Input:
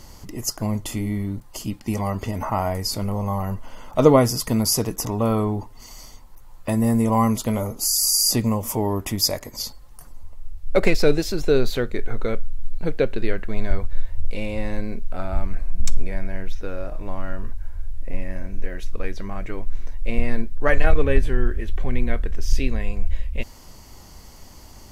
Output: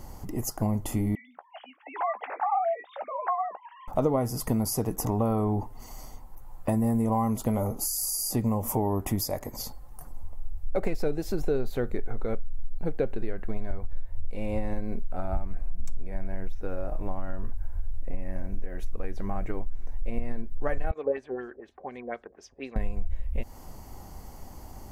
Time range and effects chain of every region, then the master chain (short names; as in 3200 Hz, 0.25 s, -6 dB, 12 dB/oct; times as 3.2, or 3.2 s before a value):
1.15–3.88 sine-wave speech + HPF 660 Hz 24 dB/oct + doubler 15 ms -12 dB
20.91–22.76 HPF 360 Hz + LFO low-pass sine 4.1 Hz 500–6800 Hz + upward expander, over -38 dBFS
whole clip: bell 780 Hz +6.5 dB 0.28 oct; compressor 5:1, threshold -23 dBFS; bell 4000 Hz -11.5 dB 2.3 oct; gain +1 dB